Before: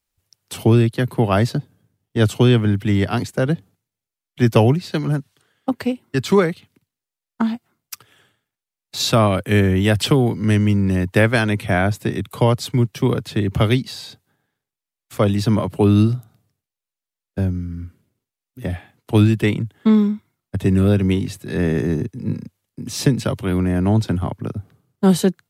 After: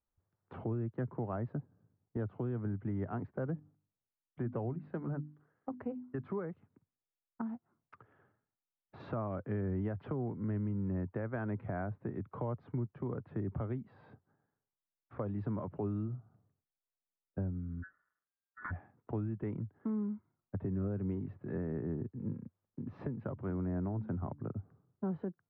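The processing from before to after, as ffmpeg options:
ffmpeg -i in.wav -filter_complex "[0:a]asplit=3[link_01][link_02][link_03];[link_01]afade=type=out:start_time=3.52:duration=0.02[link_04];[link_02]bandreject=frequency=50:width_type=h:width=6,bandreject=frequency=100:width_type=h:width=6,bandreject=frequency=150:width_type=h:width=6,bandreject=frequency=200:width_type=h:width=6,bandreject=frequency=250:width_type=h:width=6,bandreject=frequency=300:width_type=h:width=6,afade=type=in:start_time=3.52:duration=0.02,afade=type=out:start_time=6.31:duration=0.02[link_05];[link_03]afade=type=in:start_time=6.31:duration=0.02[link_06];[link_04][link_05][link_06]amix=inputs=3:normalize=0,asettb=1/sr,asplit=3[link_07][link_08][link_09];[link_07]atrim=end=15.244[link_10];[link_08]atrim=start=15.24:end=16.08,asetpts=PTS-STARTPTS,afade=type=in:duration=0.004:curve=qsin,afade=type=out:start_time=0.836:duration=0.004:curve=qsin,highshelf=frequency=2800:gain=8[link_11];[link_09]atrim=start=16.076[link_12];[link_10][link_11]acrossfade=duration=0.004:curve1=hsin:curve2=qsin[link_13];[link_13][link_12]acrossfade=duration=0.004:curve1=qsin:curve2=hsin,asplit=3[link_14][link_15][link_16];[link_14]afade=type=out:start_time=17.82:duration=0.02[link_17];[link_15]aeval=exprs='val(0)*sin(2*PI*1600*n/s)':channel_layout=same,afade=type=in:start_time=17.82:duration=0.02,afade=type=out:start_time=18.7:duration=0.02[link_18];[link_16]afade=type=in:start_time=18.7:duration=0.02[link_19];[link_17][link_18][link_19]amix=inputs=3:normalize=0,asettb=1/sr,asplit=3[link_20][link_21][link_22];[link_20]atrim=end=23.334[link_23];[link_21]atrim=start=23.33:end=24.48,asetpts=PTS-STARTPTS,afade=type=in:duration=0.004:curve=qsin,afade=type=out:start_time=1.146:duration=0.004:curve=qsin,bandreject=frequency=72.29:width_type=h:width=4,bandreject=frequency=144.58:width_type=h:width=4,bandreject=frequency=216.87:width_type=h:width=4,bandreject=frequency=289.16:width_type=h:width=4[link_24];[link_22]atrim=start=24.476[link_25];[link_23][link_24]acrossfade=duration=0.004:curve1=hsin:curve2=qsin[link_26];[link_26][link_25]acrossfade=duration=0.004:curve1=qsin:curve2=hsin,lowpass=frequency=1400:width=0.5412,lowpass=frequency=1400:width=1.3066,alimiter=limit=-14.5dB:level=0:latency=1:release=344,acompressor=threshold=-37dB:ratio=1.5,volume=-7.5dB" out.wav

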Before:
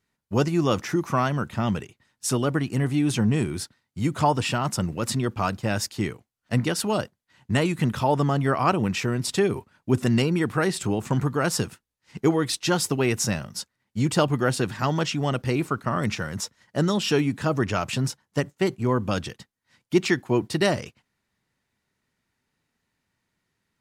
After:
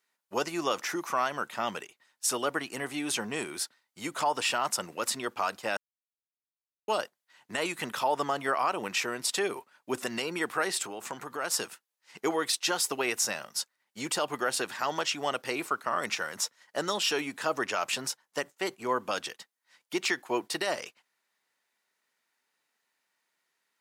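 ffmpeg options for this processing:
ffmpeg -i in.wav -filter_complex "[0:a]asettb=1/sr,asplit=3[link_01][link_02][link_03];[link_01]atrim=end=10.764[link_04];[link_02]atrim=start=10.76:end=11.54,asetpts=PTS-STARTPTS,afade=type=in:duration=0.004:curve=qsin,afade=type=out:start_time=0.776:duration=0.004:curve=qsin,acompressor=threshold=-25dB:ratio=6:attack=3.2:release=140:knee=1:detection=peak[link_05];[link_03]atrim=start=11.536[link_06];[link_04][link_05]acrossfade=duration=0.004:curve1=hsin:curve2=qsin[link_07];[link_07][link_06]acrossfade=duration=0.004:curve1=qsin:curve2=hsin,asplit=3[link_08][link_09][link_10];[link_08]atrim=end=5.77,asetpts=PTS-STARTPTS,afade=type=out:start_time=5.766:duration=0.004:curve=hsin[link_11];[link_09]atrim=start=5.77:end=6.88,asetpts=PTS-STARTPTS,volume=0[link_12];[link_10]atrim=start=6.88,asetpts=PTS-STARTPTS,afade=type=in:duration=0.004:curve=hsin[link_13];[link_11][link_12][link_13]concat=n=3:v=0:a=1,highpass=570,highshelf=frequency=11000:gain=5,alimiter=limit=-16.5dB:level=0:latency=1:release=85" out.wav

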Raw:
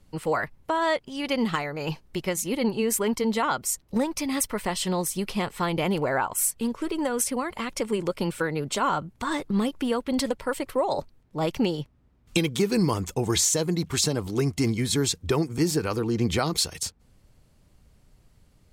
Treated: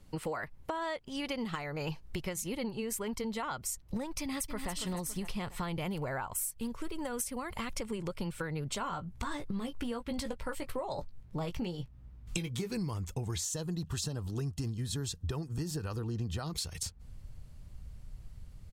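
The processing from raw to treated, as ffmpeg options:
ffmpeg -i in.wav -filter_complex "[0:a]asplit=2[link_01][link_02];[link_02]afade=type=in:start_time=4.2:duration=0.01,afade=type=out:start_time=4.71:duration=0.01,aecho=0:1:280|560|840|1120|1400:0.421697|0.168679|0.0674714|0.0269886|0.0107954[link_03];[link_01][link_03]amix=inputs=2:normalize=0,asettb=1/sr,asplit=3[link_04][link_05][link_06];[link_04]atrim=end=5.804[link_07];[link_05]atrim=start=5.8:end=7.77,asetpts=PTS-STARTPTS,afade=type=in:duration=0.004:curve=qsin,afade=type=out:start_time=1.966:duration=0.004:curve=qsin,highshelf=frequency=11000:gain=8.5[link_08];[link_06]atrim=start=7.766[link_09];[link_07][link_08]acrossfade=duration=0.004:curve1=hsin:curve2=qsin[link_10];[link_10][link_09]acrossfade=duration=0.004:curve1=qsin:curve2=hsin,asettb=1/sr,asplit=3[link_11][link_12][link_13];[link_11]atrim=end=8.794[link_14];[link_12]atrim=start=8.79:end=12.72,asetpts=PTS-STARTPTS,afade=type=in:duration=0.004:curve=qsin,afade=type=out:start_time=3.926:duration=0.004:curve=qsin,asplit=2[link_15][link_16];[link_16]adelay=17,volume=-7.5dB[link_17];[link_15][link_17]amix=inputs=2:normalize=0,atrim=end_sample=173313[link_18];[link_13]atrim=start=12.716[link_19];[link_14][link_18]acrossfade=duration=0.004:curve1=hsin:curve2=qsin[link_20];[link_20][link_19]acrossfade=duration=0.004:curve1=qsin:curve2=hsin,asettb=1/sr,asplit=3[link_21][link_22][link_23];[link_21]atrim=end=13.434[link_24];[link_22]atrim=start=13.43:end=16.5,asetpts=PTS-STARTPTS,afade=type=in:duration=0.004:curve=qsin,afade=type=out:start_time=3.066:duration=0.004:curve=qsin,asuperstop=centerf=2200:order=4:qfactor=4.6[link_25];[link_23]atrim=start=16.496[link_26];[link_24][link_25]acrossfade=duration=0.004:curve1=hsin:curve2=qsin[link_27];[link_27][link_26]acrossfade=duration=0.004:curve1=qsin:curve2=hsin,asubboost=boost=4:cutoff=140,acompressor=threshold=-34dB:ratio=6" out.wav

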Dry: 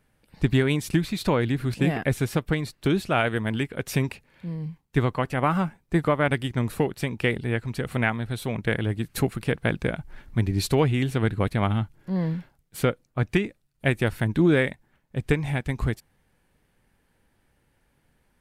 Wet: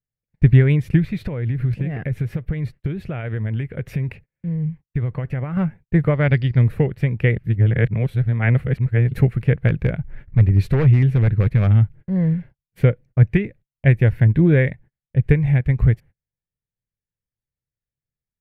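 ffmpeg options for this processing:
ffmpeg -i in.wav -filter_complex "[0:a]asettb=1/sr,asplit=3[link_01][link_02][link_03];[link_01]atrim=end=1.204[link_04];[link_02]atrim=start=1.2:end=5.57,asetpts=PTS-STARTPTS,afade=type=in:duration=0.004:curve=qsin,afade=type=out:start_time=4.366:duration=0.004:curve=qsin,acompressor=threshold=-26dB:ratio=12:attack=3.2:release=140:knee=1:detection=peak[link_05];[link_03]atrim=start=5.566[link_06];[link_04][link_05]acrossfade=duration=0.004:curve1=hsin:curve2=qsin[link_07];[link_07][link_06]acrossfade=duration=0.004:curve1=qsin:curve2=hsin,asettb=1/sr,asplit=3[link_08][link_09][link_10];[link_08]atrim=end=6.134[link_11];[link_09]atrim=start=6.13:end=6.64,asetpts=PTS-STARTPTS,afade=type=in:duration=0.004:curve=qsin,afade=type=out:start_time=0.506:duration=0.004:curve=qsin,lowpass=frequency=4700:width_type=q:width=9.2[link_12];[link_10]atrim=start=6.636[link_13];[link_11][link_12]acrossfade=duration=0.004:curve1=hsin:curve2=qsin[link_14];[link_14][link_13]acrossfade=duration=0.004:curve1=qsin:curve2=hsin,asplit=3[link_15][link_16][link_17];[link_15]afade=type=out:start_time=9.67:duration=0.02[link_18];[link_16]aeval=exprs='0.15*(abs(mod(val(0)/0.15+3,4)-2)-1)':channel_layout=same,afade=type=in:start_time=9.67:duration=0.02,afade=type=out:start_time=11.71:duration=0.02[link_19];[link_17]afade=type=in:start_time=11.71:duration=0.02[link_20];[link_18][link_19][link_20]amix=inputs=3:normalize=0,asettb=1/sr,asplit=3[link_21][link_22][link_23];[link_21]atrim=end=12.304[link_24];[link_22]atrim=start=12.3:end=15.62,asetpts=PTS-STARTPTS,afade=type=in:duration=0.004:curve=qsin,afade=type=out:start_time=3.316:duration=0.004:curve=qsin,bandreject=frequency=1300:width=12[link_25];[link_23]atrim=start=15.616[link_26];[link_24][link_25]acrossfade=duration=0.004:curve1=hsin:curve2=qsin[link_27];[link_27][link_26]acrossfade=duration=0.004:curve1=qsin:curve2=hsin,asplit=3[link_28][link_29][link_30];[link_28]atrim=end=7.382[link_31];[link_29]atrim=start=7.378:end=9.142,asetpts=PTS-STARTPTS,areverse[link_32];[link_30]atrim=start=9.138[link_33];[link_31][link_32]acrossfade=duration=0.004:curve1=hsin:curve2=hsin[link_34];[link_34][link_33]acrossfade=duration=0.004:curve1=hsin:curve2=hsin,equalizer=frequency=125:width_type=o:width=1:gain=6,equalizer=frequency=250:width_type=o:width=1:gain=-4,equalizer=frequency=500:width_type=o:width=1:gain=9,equalizer=frequency=1000:width_type=o:width=1:gain=-4,equalizer=frequency=2000:width_type=o:width=1:gain=10,equalizer=frequency=4000:width_type=o:width=1:gain=-4,equalizer=frequency=8000:width_type=o:width=1:gain=-7,agate=range=-33dB:threshold=-42dB:ratio=16:detection=peak,bass=frequency=250:gain=14,treble=frequency=4000:gain=-6,volume=-5.5dB" out.wav

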